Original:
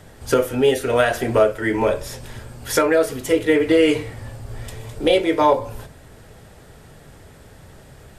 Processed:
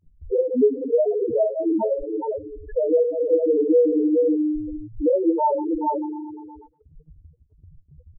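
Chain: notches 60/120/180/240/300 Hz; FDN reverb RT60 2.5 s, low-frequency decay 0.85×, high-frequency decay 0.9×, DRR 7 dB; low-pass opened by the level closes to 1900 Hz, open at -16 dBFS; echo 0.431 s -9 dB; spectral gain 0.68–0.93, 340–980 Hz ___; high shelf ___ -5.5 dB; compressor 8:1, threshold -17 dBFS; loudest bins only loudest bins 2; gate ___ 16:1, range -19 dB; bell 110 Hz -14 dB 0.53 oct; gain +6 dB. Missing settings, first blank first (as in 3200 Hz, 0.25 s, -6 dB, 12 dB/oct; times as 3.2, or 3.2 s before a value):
-8 dB, 2300 Hz, -50 dBFS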